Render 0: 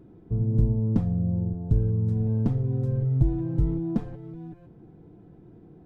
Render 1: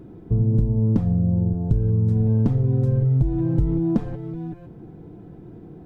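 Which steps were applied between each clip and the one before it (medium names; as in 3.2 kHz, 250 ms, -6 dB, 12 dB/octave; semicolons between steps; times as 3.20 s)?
compression, threshold -24 dBFS, peak gain reduction 10 dB; trim +8.5 dB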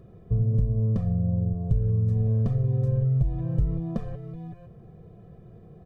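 comb 1.7 ms, depth 80%; trim -7 dB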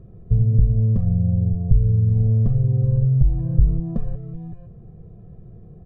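tilt EQ -3 dB/octave; trim -3.5 dB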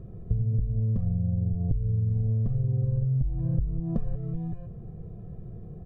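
compression 10:1, threshold -24 dBFS, peak gain reduction 16.5 dB; trim +1.5 dB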